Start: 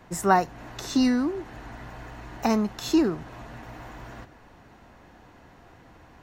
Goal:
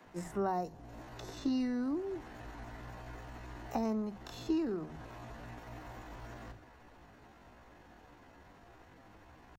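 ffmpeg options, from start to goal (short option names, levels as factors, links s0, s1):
-filter_complex "[0:a]acrossover=split=850|3700[s0][s1][s2];[s0]acompressor=threshold=0.0501:ratio=4[s3];[s1]acompressor=threshold=0.00398:ratio=4[s4];[s2]acompressor=threshold=0.002:ratio=4[s5];[s3][s4][s5]amix=inputs=3:normalize=0,atempo=0.65,acrossover=split=150[s6][s7];[s6]adelay=50[s8];[s8][s7]amix=inputs=2:normalize=0,volume=0.562"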